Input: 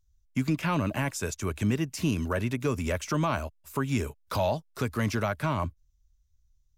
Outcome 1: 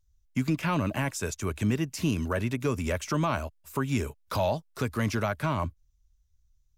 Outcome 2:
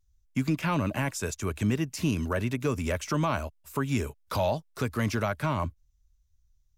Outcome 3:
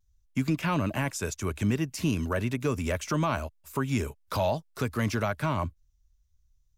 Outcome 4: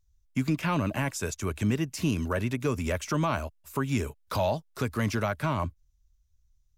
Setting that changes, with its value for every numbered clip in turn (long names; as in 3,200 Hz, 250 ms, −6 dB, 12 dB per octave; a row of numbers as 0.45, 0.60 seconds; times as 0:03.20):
pitch vibrato, speed: 4.4, 0.86, 0.46, 11 Hertz